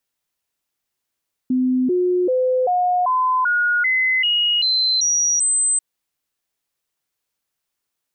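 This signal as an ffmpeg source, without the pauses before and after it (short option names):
-f lavfi -i "aevalsrc='0.178*clip(min(mod(t,0.39),0.39-mod(t,0.39))/0.005,0,1)*sin(2*PI*255*pow(2,floor(t/0.39)/2)*mod(t,0.39))':d=4.29:s=44100"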